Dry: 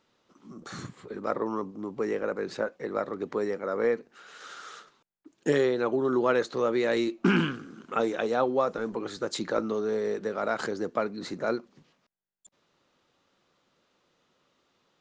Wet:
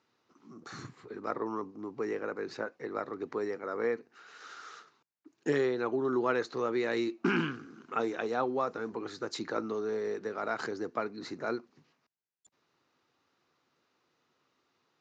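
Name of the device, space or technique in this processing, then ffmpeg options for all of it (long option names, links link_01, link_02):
car door speaker: -af "highpass=88,equalizer=frequency=190:width_type=q:width=4:gain=-8,equalizer=frequency=560:width_type=q:width=4:gain=-7,equalizer=frequency=3300:width_type=q:width=4:gain=-6,lowpass=frequency=6600:width=0.5412,lowpass=frequency=6600:width=1.3066,volume=-3dB"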